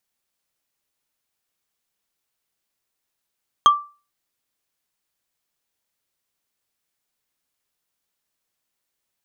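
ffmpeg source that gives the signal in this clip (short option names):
-f lavfi -i "aevalsrc='0.531*pow(10,-3*t/0.33)*sin(2*PI*1170*t)+0.188*pow(10,-3*t/0.098)*sin(2*PI*3225.7*t)+0.0668*pow(10,-3*t/0.044)*sin(2*PI*6322.7*t)+0.0237*pow(10,-3*t/0.024)*sin(2*PI*10451.6*t)+0.00841*pow(10,-3*t/0.015)*sin(2*PI*15607.8*t)':d=0.45:s=44100"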